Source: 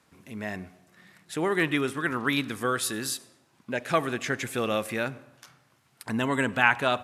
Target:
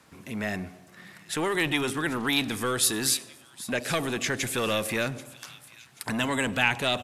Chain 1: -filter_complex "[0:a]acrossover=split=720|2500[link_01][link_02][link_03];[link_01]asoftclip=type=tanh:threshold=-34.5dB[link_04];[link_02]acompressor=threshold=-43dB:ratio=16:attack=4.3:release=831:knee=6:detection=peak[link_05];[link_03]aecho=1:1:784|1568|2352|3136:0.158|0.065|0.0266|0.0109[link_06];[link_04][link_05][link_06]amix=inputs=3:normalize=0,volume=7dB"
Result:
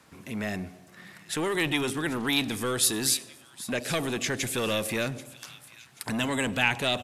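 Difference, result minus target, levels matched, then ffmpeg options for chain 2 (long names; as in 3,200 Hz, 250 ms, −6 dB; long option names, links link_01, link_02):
downward compressor: peak gain reduction +6 dB
-filter_complex "[0:a]acrossover=split=720|2500[link_01][link_02][link_03];[link_01]asoftclip=type=tanh:threshold=-34.5dB[link_04];[link_02]acompressor=threshold=-36.5dB:ratio=16:attack=4.3:release=831:knee=6:detection=peak[link_05];[link_03]aecho=1:1:784|1568|2352|3136:0.158|0.065|0.0266|0.0109[link_06];[link_04][link_05][link_06]amix=inputs=3:normalize=0,volume=7dB"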